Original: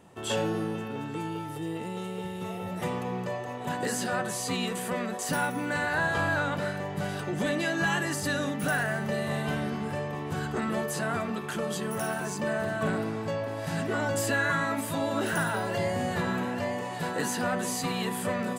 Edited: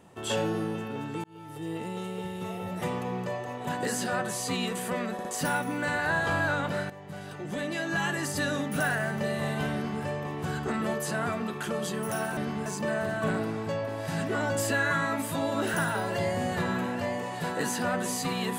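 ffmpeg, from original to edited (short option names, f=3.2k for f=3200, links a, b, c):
-filter_complex "[0:a]asplit=7[a][b][c][d][e][f][g];[a]atrim=end=1.24,asetpts=PTS-STARTPTS,afade=t=out:st=1.236:d=0.004:c=hsin[h];[b]atrim=start=1.24:end=5.192,asetpts=PTS-STARTPTS,afade=t=in:d=0.5[i];[c]atrim=start=5.128:end=5.192[j];[d]atrim=start=5.128:end=6.78,asetpts=PTS-STARTPTS,afade=t=out:st=1.648:d=0.004:c=hsin:silence=0.237137[k];[e]atrim=start=6.78:end=12.252,asetpts=PTS-STARTPTS,afade=t=in:d=1.5:silence=0.237137[l];[f]atrim=start=9.618:end=9.912[m];[g]atrim=start=12.248[n];[h][i]concat=n=2:v=0:a=1[o];[o][j]acrossfade=d=0.004:c1=hsin:c2=hsin[p];[k][l]concat=n=2:v=0:a=1[q];[p][q]acrossfade=d=0.004:c1=hsin:c2=hsin[r];[r][m]acrossfade=d=0.004:c1=hsin:c2=hsin[s];[s][n]acrossfade=d=0.004:c1=hsin:c2=hsin"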